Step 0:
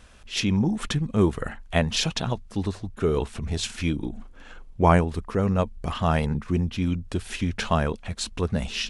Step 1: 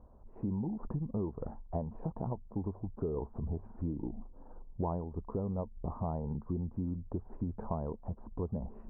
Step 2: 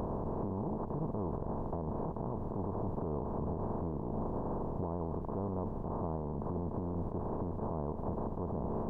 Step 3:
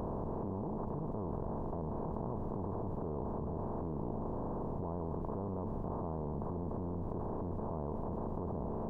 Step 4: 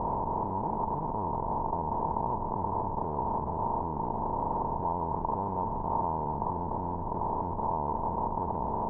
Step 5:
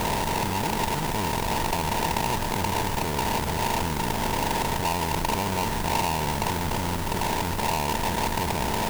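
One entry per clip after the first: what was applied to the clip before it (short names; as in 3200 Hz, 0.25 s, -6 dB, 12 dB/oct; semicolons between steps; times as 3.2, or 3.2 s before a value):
elliptic low-pass 970 Hz, stop band 70 dB; compressor 6:1, threshold -28 dBFS, peak gain reduction 13.5 dB; gain -4 dB
per-bin compression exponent 0.2; limiter -24 dBFS, peak gain reduction 10.5 dB; gain -3.5 dB
reverse delay 0.367 s, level -13.5 dB; level quantiser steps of 22 dB; gain +6 dB
in parallel at -8.5 dB: Schmitt trigger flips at -37.5 dBFS; on the sum: synth low-pass 930 Hz, resonance Q 9.1
half-waves squared off; added noise white -43 dBFS; gain +1.5 dB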